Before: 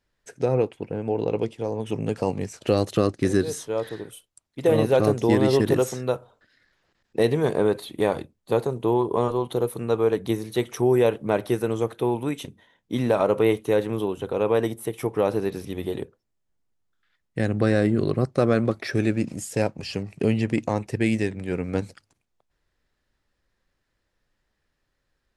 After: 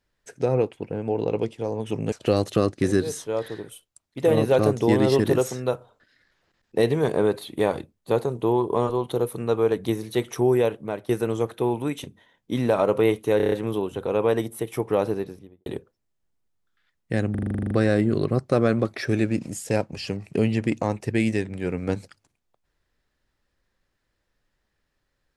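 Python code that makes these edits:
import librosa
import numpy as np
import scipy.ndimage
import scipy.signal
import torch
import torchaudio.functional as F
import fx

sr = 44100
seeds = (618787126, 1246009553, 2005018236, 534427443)

y = fx.studio_fade_out(x, sr, start_s=15.24, length_s=0.68)
y = fx.edit(y, sr, fx.cut(start_s=2.12, length_s=0.41),
    fx.fade_out_to(start_s=10.89, length_s=0.61, floor_db=-13.0),
    fx.stutter(start_s=13.78, slice_s=0.03, count=6),
    fx.stutter(start_s=17.57, slice_s=0.04, count=11), tone=tone)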